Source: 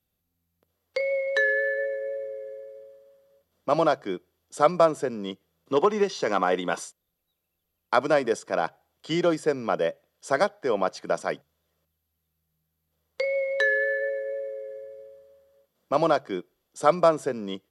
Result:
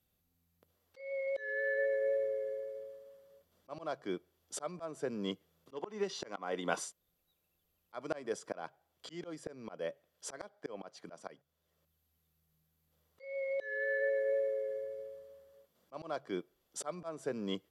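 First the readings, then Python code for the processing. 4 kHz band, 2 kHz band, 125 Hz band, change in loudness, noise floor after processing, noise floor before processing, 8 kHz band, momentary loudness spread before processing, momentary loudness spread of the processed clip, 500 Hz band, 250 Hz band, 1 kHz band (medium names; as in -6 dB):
-11.0 dB, -12.5 dB, -13.5 dB, -13.0 dB, -80 dBFS, -80 dBFS, -5.0 dB, 15 LU, 18 LU, -12.0 dB, -12.5 dB, -19.5 dB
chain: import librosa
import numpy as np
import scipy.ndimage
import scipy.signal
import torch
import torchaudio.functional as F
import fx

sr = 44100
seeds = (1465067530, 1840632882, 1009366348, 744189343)

y = fx.auto_swell(x, sr, attack_ms=736.0)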